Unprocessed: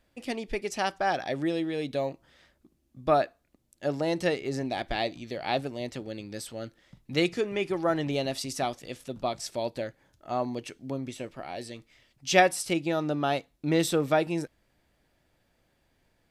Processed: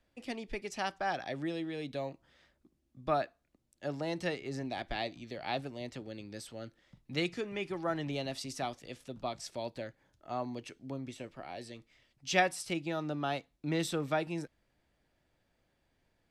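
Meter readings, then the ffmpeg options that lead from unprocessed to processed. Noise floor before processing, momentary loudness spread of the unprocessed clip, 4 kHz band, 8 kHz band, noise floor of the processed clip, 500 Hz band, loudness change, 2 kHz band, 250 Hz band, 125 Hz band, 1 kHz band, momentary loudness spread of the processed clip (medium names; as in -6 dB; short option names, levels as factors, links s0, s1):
-71 dBFS, 13 LU, -6.0 dB, -8.0 dB, -77 dBFS, -8.5 dB, -7.5 dB, -6.0 dB, -7.5 dB, -5.5 dB, -7.0 dB, 12 LU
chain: -filter_complex "[0:a]highshelf=f=12000:g=-12,acrossover=split=370|560|3800[s0][s1][s2][s3];[s1]acompressor=threshold=0.00447:ratio=6[s4];[s0][s4][s2][s3]amix=inputs=4:normalize=0,volume=0.531"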